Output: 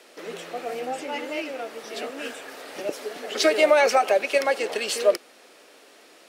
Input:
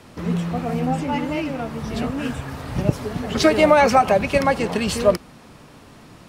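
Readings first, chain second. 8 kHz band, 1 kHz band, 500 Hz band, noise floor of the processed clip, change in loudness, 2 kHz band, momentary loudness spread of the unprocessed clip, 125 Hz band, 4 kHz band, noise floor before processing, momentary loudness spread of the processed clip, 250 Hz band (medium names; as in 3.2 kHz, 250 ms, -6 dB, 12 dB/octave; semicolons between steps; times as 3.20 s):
0.0 dB, -6.0 dB, -2.5 dB, -53 dBFS, -4.0 dB, -1.5 dB, 14 LU, under -30 dB, -0.5 dB, -46 dBFS, 17 LU, -13.0 dB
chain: high-pass 400 Hz 24 dB/octave; peaking EQ 1 kHz -10 dB 0.79 oct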